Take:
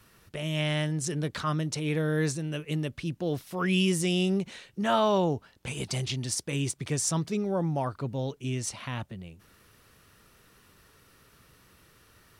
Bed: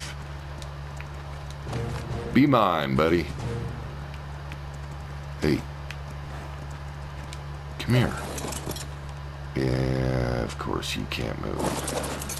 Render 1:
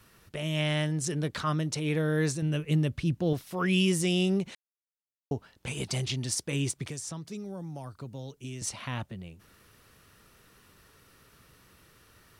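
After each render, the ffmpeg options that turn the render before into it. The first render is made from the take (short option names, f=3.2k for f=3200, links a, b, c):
-filter_complex "[0:a]asettb=1/sr,asplit=3[a][b][c];[a]atrim=end=2.424[d];[b]atrim=start=2.42:end=3.33,asetpts=PTS-STARTPTS,afade=t=in:d=0.004:c=qsin,afade=t=out:st=0.906:d=0.004:c=qsin,equalizer=f=77:t=o:w=2.6:g=9[e];[c]atrim=start=3.326[f];[d][e]acrossfade=d=0.004:c1=hsin:c2=qsin[g];[g][f]acrossfade=d=0.004:c1=qsin:c2=hsin,asettb=1/sr,asplit=3[h][i][j];[h]atrim=end=6.874[k];[i]atrim=start=6.87:end=8.62,asetpts=PTS-STARTPTS,afade=t=in:d=0.004:c=qsin,afade=t=out:st=1.746:d=0.004:c=qsin,acrossover=split=220|4600[l][m][n];[l]acompressor=threshold=-42dB:ratio=4[o];[m]acompressor=threshold=-44dB:ratio=4[p];[n]acompressor=threshold=-41dB:ratio=4[q];[o][p][q]amix=inputs=3:normalize=0[r];[j]atrim=start=8.616[s];[k][r]acrossfade=d=0.004:c1=hsin:c2=qsin[t];[t][s]acrossfade=d=0.004:c1=qsin:c2=hsin,asplit=3[u][v][w];[u]atrim=end=4.55,asetpts=PTS-STARTPTS,afade=t=out:st=4.546:d=0.004:c=hsin[x];[v]atrim=start=4.55:end=5.31,asetpts=PTS-STARTPTS,volume=0[y];[w]atrim=start=5.31,asetpts=PTS-STARTPTS,afade=t=in:d=0.004:c=hsin[z];[x][y][z]concat=n=3:v=0:a=1"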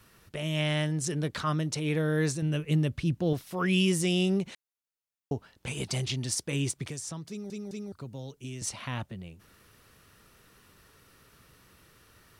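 -filter_complex "[0:a]asplit=4[a][b][c][d];[a]atrim=end=7.502[e];[b]atrim=start=7.288:end=7.502[f];[c]atrim=start=7.288:end=7.502[g];[d]atrim=start=7.918[h];[e][f]acrossfade=d=0.004:c1=hsin:c2=hsin[i];[i][g]acrossfade=d=0.004:c1=hsin:c2=hsin[j];[j][h]acrossfade=d=0.004:c1=hsin:c2=hsin"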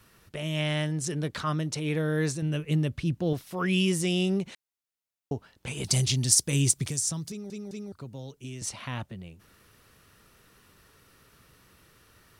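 -filter_complex "[0:a]asettb=1/sr,asplit=3[a][b][c];[a]atrim=end=5.844[d];[b]atrim=start=5.84:end=7.32,asetpts=PTS-STARTPTS,afade=t=in:d=0.004:c=qsin,afade=t=out:st=1.476:d=0.004:c=qsin,bass=f=250:g=7,treble=f=4k:g=12[e];[c]atrim=start=7.316[f];[d][e]acrossfade=d=0.004:c1=hsin:c2=qsin[g];[g][f]acrossfade=d=0.004:c1=qsin:c2=hsin"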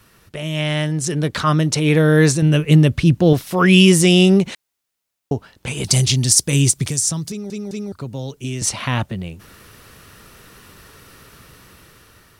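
-af "dynaudnorm=f=530:g=5:m=8dB,alimiter=level_in=6.5dB:limit=-1dB:release=50:level=0:latency=1"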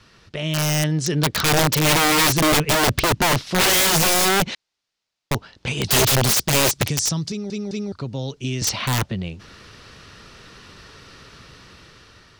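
-af "lowpass=f=4.9k:t=q:w=1.6,aeval=exprs='(mod(3.98*val(0)+1,2)-1)/3.98':c=same"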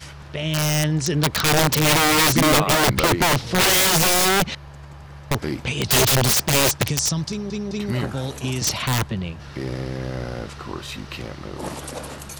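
-filter_complex "[1:a]volume=-3.5dB[a];[0:a][a]amix=inputs=2:normalize=0"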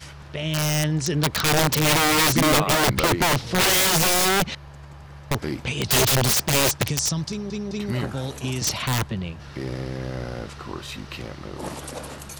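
-af "volume=-2dB"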